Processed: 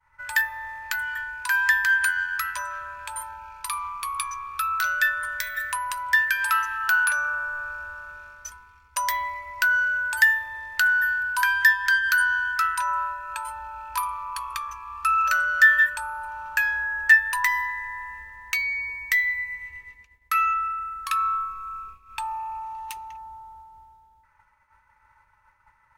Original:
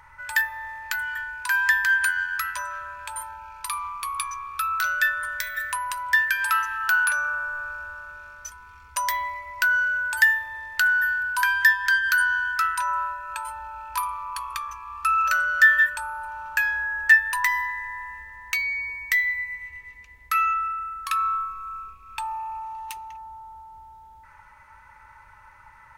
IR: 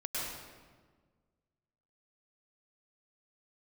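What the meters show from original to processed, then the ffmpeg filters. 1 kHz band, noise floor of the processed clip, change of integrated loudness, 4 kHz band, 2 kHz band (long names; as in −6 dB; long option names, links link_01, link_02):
0.0 dB, −62 dBFS, 0.0 dB, 0.0 dB, 0.0 dB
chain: -af "agate=range=-33dB:threshold=-41dB:ratio=3:detection=peak"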